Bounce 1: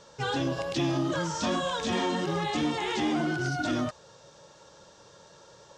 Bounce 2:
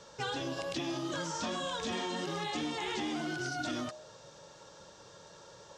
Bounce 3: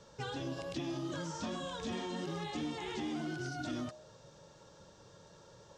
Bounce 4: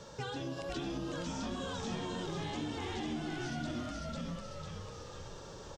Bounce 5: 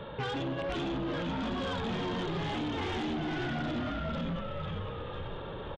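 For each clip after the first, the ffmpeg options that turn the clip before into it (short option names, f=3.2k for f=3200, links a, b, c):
-filter_complex "[0:a]bandreject=f=68.49:t=h:w=4,bandreject=f=136.98:t=h:w=4,bandreject=f=205.47:t=h:w=4,bandreject=f=273.96:t=h:w=4,bandreject=f=342.45:t=h:w=4,bandreject=f=410.94:t=h:w=4,bandreject=f=479.43:t=h:w=4,bandreject=f=547.92:t=h:w=4,bandreject=f=616.41:t=h:w=4,bandreject=f=684.9:t=h:w=4,bandreject=f=753.39:t=h:w=4,bandreject=f=821.88:t=h:w=4,bandreject=f=890.37:t=h:w=4,bandreject=f=958.86:t=h:w=4,bandreject=f=1.02735k:t=h:w=4,bandreject=f=1.09584k:t=h:w=4,acrossover=split=220|2600[a][b][c];[a]acompressor=threshold=-49dB:ratio=4[d];[b]acompressor=threshold=-36dB:ratio=4[e];[c]acompressor=threshold=-41dB:ratio=4[f];[d][e][f]amix=inputs=3:normalize=0"
-af "lowshelf=f=330:g=10,volume=-7dB"
-filter_complex "[0:a]asplit=2[a][b];[b]asplit=6[c][d][e][f][g][h];[c]adelay=498,afreqshift=-75,volume=-3dB[i];[d]adelay=996,afreqshift=-150,volume=-10.3dB[j];[e]adelay=1494,afreqshift=-225,volume=-17.7dB[k];[f]adelay=1992,afreqshift=-300,volume=-25dB[l];[g]adelay=2490,afreqshift=-375,volume=-32.3dB[m];[h]adelay=2988,afreqshift=-450,volume=-39.7dB[n];[i][j][k][l][m][n]amix=inputs=6:normalize=0[o];[a][o]amix=inputs=2:normalize=0,acompressor=threshold=-50dB:ratio=2,volume=7.5dB"
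-af "aresample=8000,aresample=44100,aeval=exprs='0.0447*(cos(1*acos(clip(val(0)/0.0447,-1,1)))-cos(1*PI/2))+0.0158*(cos(5*acos(clip(val(0)/0.0447,-1,1)))-cos(5*PI/2))':c=same"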